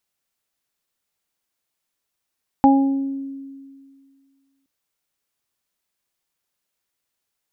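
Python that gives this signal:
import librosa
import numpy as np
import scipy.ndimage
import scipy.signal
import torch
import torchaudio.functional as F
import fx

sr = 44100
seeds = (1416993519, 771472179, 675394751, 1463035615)

y = fx.additive(sr, length_s=2.02, hz=273.0, level_db=-10.0, upper_db=(-12, 0), decay_s=2.06, upper_decays_s=(0.92, 0.53))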